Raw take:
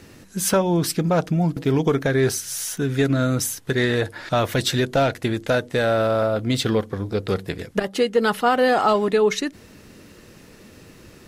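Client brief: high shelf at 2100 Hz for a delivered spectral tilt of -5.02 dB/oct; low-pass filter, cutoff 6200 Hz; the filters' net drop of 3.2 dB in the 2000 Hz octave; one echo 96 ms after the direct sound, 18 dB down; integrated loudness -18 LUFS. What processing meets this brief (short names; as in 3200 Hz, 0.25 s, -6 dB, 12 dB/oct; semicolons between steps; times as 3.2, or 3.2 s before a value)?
LPF 6200 Hz; bell 2000 Hz -7 dB; high shelf 2100 Hz +5 dB; echo 96 ms -18 dB; gain +3.5 dB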